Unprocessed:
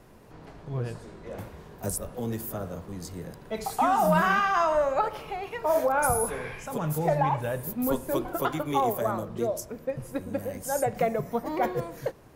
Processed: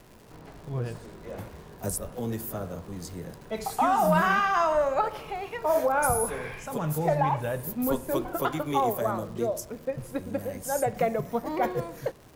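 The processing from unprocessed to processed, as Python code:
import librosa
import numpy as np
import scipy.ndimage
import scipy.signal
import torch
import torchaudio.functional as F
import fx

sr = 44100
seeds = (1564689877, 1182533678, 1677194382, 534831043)

y = fx.dmg_crackle(x, sr, seeds[0], per_s=230.0, level_db=-43.0)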